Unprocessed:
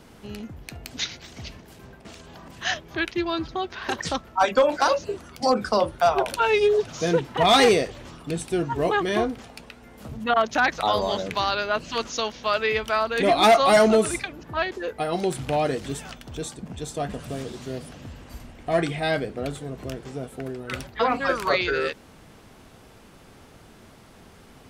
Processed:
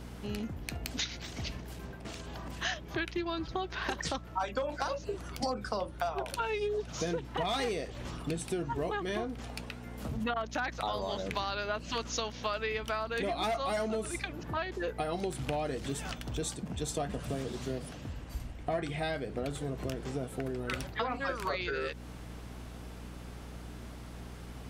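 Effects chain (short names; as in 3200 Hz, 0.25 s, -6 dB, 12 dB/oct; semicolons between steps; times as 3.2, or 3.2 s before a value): compressor 8:1, threshold -31 dBFS, peak gain reduction 17.5 dB; hum 60 Hz, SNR 10 dB; 16.33–18.82 three-band expander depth 40%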